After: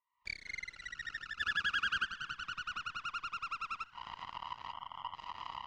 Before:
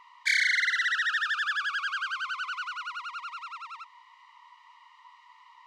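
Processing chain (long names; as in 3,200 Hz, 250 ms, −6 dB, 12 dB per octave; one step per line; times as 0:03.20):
camcorder AGC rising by 61 dB per second
noise reduction from a noise print of the clip's start 9 dB
0:01.40–0:02.05: high-shelf EQ 2,300 Hz +12 dB
0:04.73–0:05.14: time-frequency box erased 1,500–6,200 Hz
harmonic generator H 3 −19 dB, 5 −40 dB, 6 −34 dB, 7 −19 dB, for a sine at −15 dBFS
high-frequency loss of the air 130 metres
on a send: echo with shifted repeats 246 ms, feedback 63%, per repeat +45 Hz, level −22.5 dB
on the sum: level −6 dB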